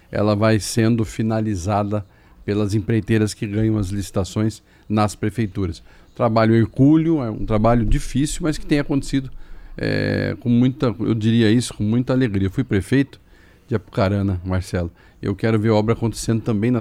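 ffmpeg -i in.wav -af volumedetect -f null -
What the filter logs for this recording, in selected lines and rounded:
mean_volume: -19.4 dB
max_volume: -5.6 dB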